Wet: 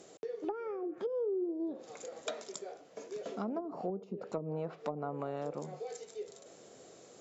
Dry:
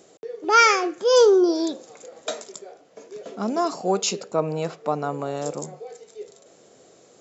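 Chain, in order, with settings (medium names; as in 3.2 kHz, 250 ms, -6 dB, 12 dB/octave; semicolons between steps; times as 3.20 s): 4.03–6.05 s: treble shelf 3.2 kHz +6 dB; low-pass that closes with the level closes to 320 Hz, closed at -18 dBFS; compression 2.5:1, threshold -35 dBFS, peak gain reduction 11 dB; trim -2.5 dB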